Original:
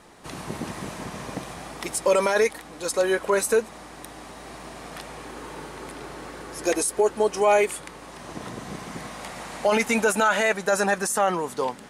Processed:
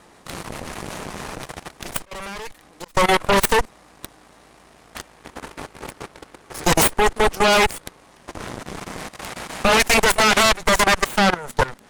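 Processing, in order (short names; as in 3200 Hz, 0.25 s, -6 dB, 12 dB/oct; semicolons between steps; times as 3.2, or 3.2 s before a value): added harmonics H 4 -8 dB, 8 -8 dB, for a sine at -9 dBFS; 1.97–2.95 auto swell 0.731 s; level quantiser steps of 18 dB; gain +3.5 dB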